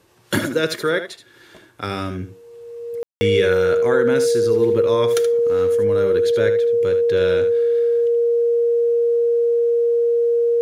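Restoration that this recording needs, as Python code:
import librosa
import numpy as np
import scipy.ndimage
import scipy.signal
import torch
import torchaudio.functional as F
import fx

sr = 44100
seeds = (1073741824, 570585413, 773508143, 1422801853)

y = fx.notch(x, sr, hz=470.0, q=30.0)
y = fx.fix_ambience(y, sr, seeds[0], print_start_s=1.29, print_end_s=1.79, start_s=3.03, end_s=3.21)
y = fx.fix_echo_inverse(y, sr, delay_ms=76, level_db=-10.0)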